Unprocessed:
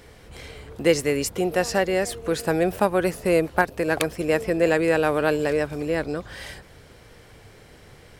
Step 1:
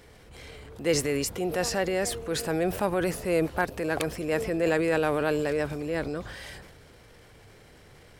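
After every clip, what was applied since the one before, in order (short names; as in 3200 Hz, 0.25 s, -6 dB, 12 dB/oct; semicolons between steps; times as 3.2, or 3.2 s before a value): transient shaper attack -4 dB, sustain +6 dB; gain -4.5 dB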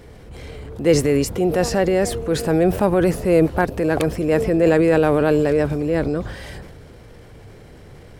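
tilt shelf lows +5 dB, about 770 Hz; gain +7.5 dB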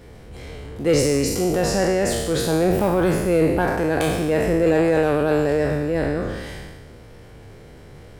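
spectral trails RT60 1.20 s; soft clip -4 dBFS, distortion -23 dB; gain -3 dB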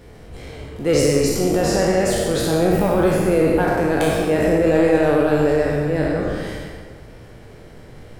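reverb RT60 1.4 s, pre-delay 24 ms, DRR 2.5 dB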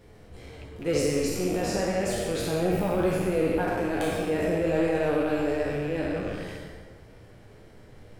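rattling part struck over -27 dBFS, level -24 dBFS; flange 0.52 Hz, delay 9.3 ms, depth 2.2 ms, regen -44%; gain -5 dB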